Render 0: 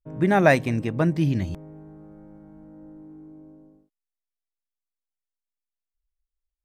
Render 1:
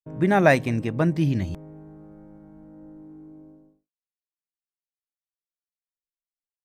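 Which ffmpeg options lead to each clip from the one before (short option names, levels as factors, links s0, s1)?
-af "agate=range=0.0224:threshold=0.00501:ratio=3:detection=peak"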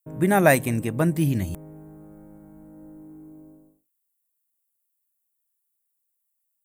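-af "aexciter=amount=8.7:drive=5.4:freq=7600"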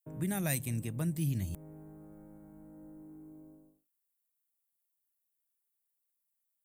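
-filter_complex "[0:a]acrossover=split=180|3000[s0][s1][s2];[s1]acompressor=threshold=0.00891:ratio=2.5[s3];[s0][s3][s2]amix=inputs=3:normalize=0,volume=0.473"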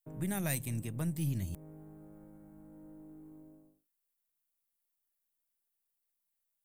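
-af "aeval=exprs='if(lt(val(0),0),0.708*val(0),val(0))':c=same"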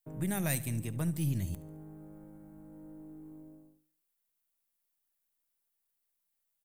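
-af "aecho=1:1:71|142|213|284:0.126|0.0617|0.0302|0.0148,volume=1.26"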